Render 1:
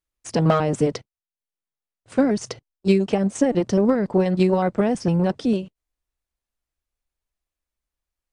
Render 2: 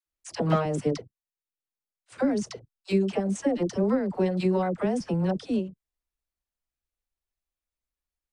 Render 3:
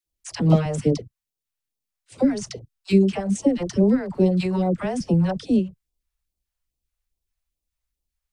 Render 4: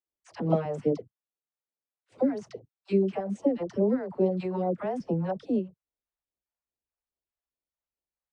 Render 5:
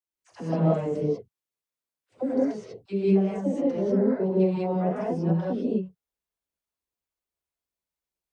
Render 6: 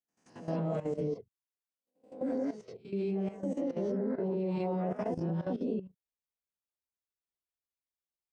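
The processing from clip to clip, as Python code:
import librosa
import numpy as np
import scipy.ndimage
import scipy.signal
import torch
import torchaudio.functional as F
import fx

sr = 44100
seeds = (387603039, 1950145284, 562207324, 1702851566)

y1 = fx.dispersion(x, sr, late='lows', ms=61.0, hz=600.0)
y1 = y1 * 10.0 ** (-6.0 / 20.0)
y2 = fx.low_shelf(y1, sr, hz=240.0, db=5.5)
y2 = fx.phaser_stages(y2, sr, stages=2, low_hz=250.0, high_hz=1700.0, hz=2.4, feedback_pct=0)
y2 = y2 * 10.0 ** (5.5 / 20.0)
y3 = fx.bandpass_q(y2, sr, hz=600.0, q=0.77)
y3 = fx.wow_flutter(y3, sr, seeds[0], rate_hz=2.1, depth_cents=25.0)
y3 = y3 * 10.0 ** (-2.5 / 20.0)
y4 = fx.rev_gated(y3, sr, seeds[1], gate_ms=220, shape='rising', drr_db=-6.5)
y4 = y4 * 10.0 ** (-5.0 / 20.0)
y5 = fx.spec_swells(y4, sr, rise_s=0.36)
y5 = fx.level_steps(y5, sr, step_db=14)
y5 = y5 * 10.0 ** (-4.0 / 20.0)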